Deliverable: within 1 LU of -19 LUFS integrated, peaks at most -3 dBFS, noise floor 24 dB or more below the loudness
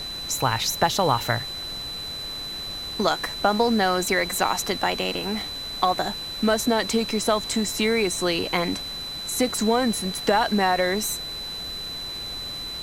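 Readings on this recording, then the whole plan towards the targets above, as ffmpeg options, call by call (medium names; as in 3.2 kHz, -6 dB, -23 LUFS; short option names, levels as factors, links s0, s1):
steady tone 4 kHz; tone level -31 dBFS; noise floor -33 dBFS; noise floor target -48 dBFS; loudness -24.0 LUFS; peak level -5.5 dBFS; loudness target -19.0 LUFS
-> -af "bandreject=f=4000:w=30"
-af "afftdn=nr=15:nf=-33"
-af "volume=1.78,alimiter=limit=0.708:level=0:latency=1"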